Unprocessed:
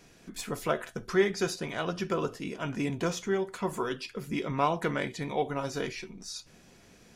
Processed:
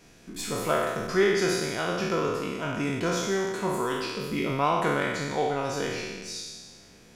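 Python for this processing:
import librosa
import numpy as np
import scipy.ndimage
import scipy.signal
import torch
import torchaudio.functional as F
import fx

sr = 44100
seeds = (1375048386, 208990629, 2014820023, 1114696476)

y = fx.spec_trails(x, sr, decay_s=1.44)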